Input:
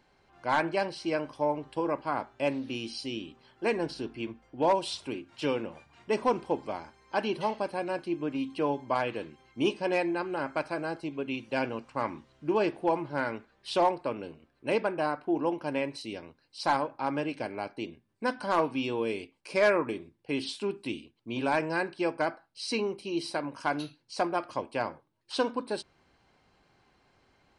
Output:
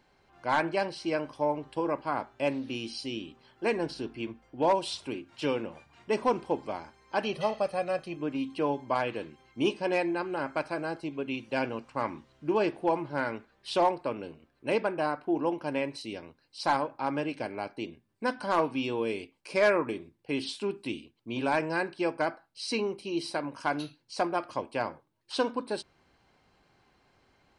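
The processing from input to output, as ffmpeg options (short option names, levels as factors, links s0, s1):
-filter_complex "[0:a]asettb=1/sr,asplit=3[s0][s1][s2];[s0]atrim=end=7.234[s3];[s1]atrim=start=7.23:end=8.17,asetpts=PTS-STARTPTS,afade=t=in:d=0.004:c=qsin,afade=t=out:st=0.936:d=0.004:c=qsin,aecho=1:1:1.6:0.71,atrim=end_sample=41454[s4];[s2]atrim=start=8.166[s5];[s3][s4]acrossfade=d=0.004:c1=hsin:c2=qsin[s6];[s6][s5]acrossfade=d=0.004:c1=qsin:c2=hsin"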